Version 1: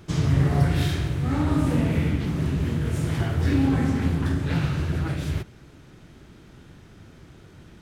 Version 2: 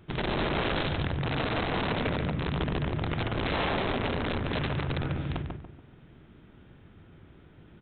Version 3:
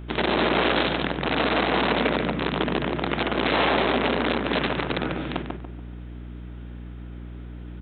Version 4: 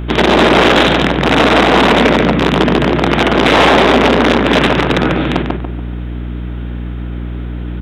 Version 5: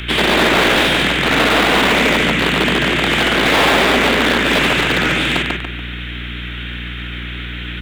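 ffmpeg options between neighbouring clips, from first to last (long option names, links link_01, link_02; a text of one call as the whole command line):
ffmpeg -i in.wav -filter_complex "[0:a]aresample=8000,aeval=exprs='(mod(7.94*val(0)+1,2)-1)/7.94':channel_layout=same,aresample=44100,asplit=2[link_01][link_02];[link_02]adelay=143,lowpass=frequency=1400:poles=1,volume=-3dB,asplit=2[link_03][link_04];[link_04]adelay=143,lowpass=frequency=1400:poles=1,volume=0.38,asplit=2[link_05][link_06];[link_06]adelay=143,lowpass=frequency=1400:poles=1,volume=0.38,asplit=2[link_07][link_08];[link_08]adelay=143,lowpass=frequency=1400:poles=1,volume=0.38,asplit=2[link_09][link_10];[link_10]adelay=143,lowpass=frequency=1400:poles=1,volume=0.38[link_11];[link_01][link_03][link_05][link_07][link_09][link_11]amix=inputs=6:normalize=0,volume=-7dB" out.wav
ffmpeg -i in.wav -af "highpass=frequency=200:width=0.5412,highpass=frequency=200:width=1.3066,aeval=exprs='val(0)+0.00631*(sin(2*PI*60*n/s)+sin(2*PI*2*60*n/s)/2+sin(2*PI*3*60*n/s)/3+sin(2*PI*4*60*n/s)/4+sin(2*PI*5*60*n/s)/5)':channel_layout=same,volume=8dB" out.wav
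ffmpeg -i in.wav -af "apsyclip=11dB,acontrast=46,volume=-1dB" out.wav
ffmpeg -i in.wav -filter_complex "[0:a]acrossover=split=300|1100|1700[link_01][link_02][link_03][link_04];[link_03]acrusher=bits=4:dc=4:mix=0:aa=0.000001[link_05];[link_04]asplit=2[link_06][link_07];[link_07]highpass=frequency=720:poles=1,volume=33dB,asoftclip=type=tanh:threshold=-1.5dB[link_08];[link_06][link_08]amix=inputs=2:normalize=0,lowpass=frequency=2800:poles=1,volume=-6dB[link_09];[link_01][link_02][link_05][link_09]amix=inputs=4:normalize=0,volume=-6.5dB" out.wav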